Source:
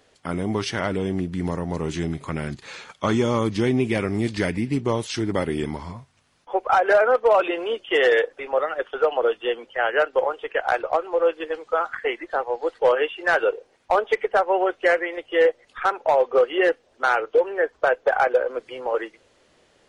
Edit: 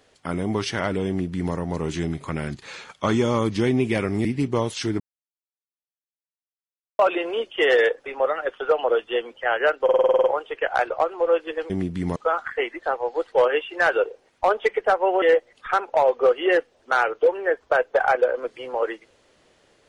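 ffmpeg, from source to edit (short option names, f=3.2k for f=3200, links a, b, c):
-filter_complex "[0:a]asplit=15[a][b][c][d][e][f][g][h][i][j][k][l][m][n][o];[a]atrim=end=4.252[p];[b]atrim=start=4.578:end=5.33,asetpts=PTS-STARTPTS,afade=t=out:st=0.748:d=0.004:c=hsin[q];[c]atrim=start=5.33:end=7.32,asetpts=PTS-STARTPTS,volume=0[r];[d]atrim=start=7.32:end=10.222,asetpts=PTS-STARTPTS,afade=t=in:d=0.004:c=hsin[s];[e]atrim=start=10.168:end=10.222[t];[f]atrim=start=10.168:end=10.222[u];[g]atrim=start=10.168:end=10.222[v];[h]atrim=start=10.168:end=10.222[w];[i]atrim=start=10.168:end=10.222[x];[j]atrim=start=10.168:end=10.222[y];[k]atrim=start=10.168:end=10.222[z];[l]atrim=start=10.168:end=11.632[aa];[m]atrim=start=1.078:end=1.542[ab];[n]atrim=start=11.628:end=14.692[ac];[o]atrim=start=15.338[ad];[q][r][s]concat=n=3:v=0:a=1[ae];[p][ae]acrossfade=d=0.004:c1=hsin:c2=hsin[af];[af][t]acrossfade=d=0.004:c1=hsin:c2=hsin[ag];[ag][u]acrossfade=d=0.004:c1=hsin:c2=hsin[ah];[ah][v]acrossfade=d=0.004:c1=hsin:c2=hsin[ai];[ai][w]acrossfade=d=0.004:c1=hsin:c2=hsin[aj];[aj][x]acrossfade=d=0.004:c1=hsin:c2=hsin[ak];[ak][y]acrossfade=d=0.004:c1=hsin:c2=hsin[al];[al][z]acrossfade=d=0.004:c1=hsin:c2=hsin[am];[am][aa]acrossfade=d=0.004:c1=hsin:c2=hsin[an];[an][ab]acrossfade=d=0.004:c1=hsin:c2=hsin[ao];[ao][ac]acrossfade=d=0.004:c1=hsin:c2=hsin[ap];[ap][ad]acrossfade=d=0.004:c1=hsin:c2=hsin"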